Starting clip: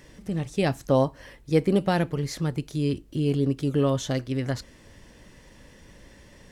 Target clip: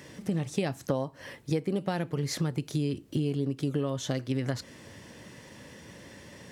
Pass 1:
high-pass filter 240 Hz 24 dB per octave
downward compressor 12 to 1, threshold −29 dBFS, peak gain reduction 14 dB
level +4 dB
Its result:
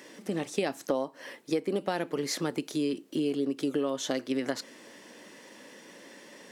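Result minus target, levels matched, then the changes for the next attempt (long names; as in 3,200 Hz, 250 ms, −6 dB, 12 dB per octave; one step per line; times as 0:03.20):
125 Hz band −12.5 dB
change: high-pass filter 89 Hz 24 dB per octave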